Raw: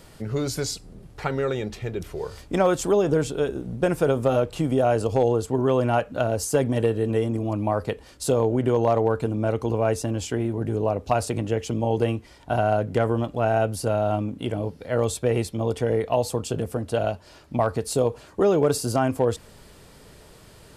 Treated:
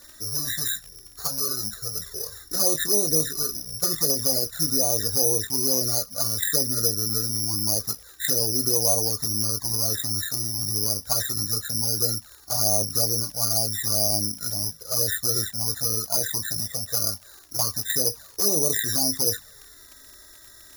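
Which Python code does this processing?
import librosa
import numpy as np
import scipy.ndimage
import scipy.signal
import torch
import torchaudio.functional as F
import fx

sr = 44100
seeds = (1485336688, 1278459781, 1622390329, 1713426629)

y = fx.freq_compress(x, sr, knee_hz=1100.0, ratio=4.0)
y = fx.dmg_crackle(y, sr, seeds[0], per_s=130.0, level_db=-35.0)
y = fx.doubler(y, sr, ms=19.0, db=-7.5)
y = (np.kron(y[::8], np.eye(8)[0]) * 8)[:len(y)]
y = fx.env_flanger(y, sr, rest_ms=3.5, full_db=-5.0)
y = y * 10.0 ** (-8.0 / 20.0)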